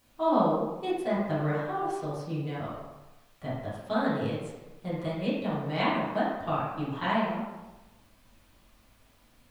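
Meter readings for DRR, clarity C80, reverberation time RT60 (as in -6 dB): -10.0 dB, 3.0 dB, 1.1 s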